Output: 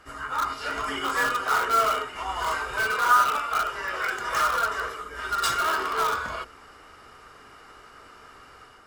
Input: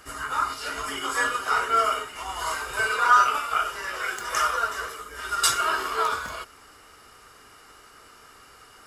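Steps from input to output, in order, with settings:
automatic gain control gain up to 5 dB
low-pass filter 2,300 Hz 6 dB per octave
mains-hum notches 50/100/150/200/250/300/350/400/450/500 Hz
in parallel at −9.5 dB: wrap-around overflow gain 18 dB
on the sum: level −3.5 dB

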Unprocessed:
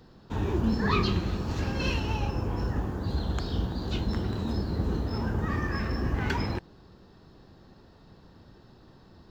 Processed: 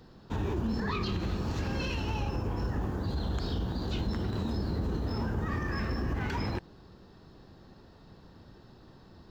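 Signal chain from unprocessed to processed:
brickwall limiter −23.5 dBFS, peak gain reduction 10 dB

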